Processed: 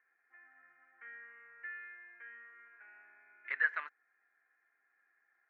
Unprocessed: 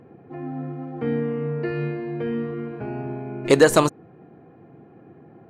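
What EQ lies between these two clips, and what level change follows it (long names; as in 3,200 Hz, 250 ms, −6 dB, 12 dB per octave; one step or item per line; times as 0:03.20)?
flat-topped band-pass 1,800 Hz, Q 2.9
high-frequency loss of the air 170 metres
−3.5 dB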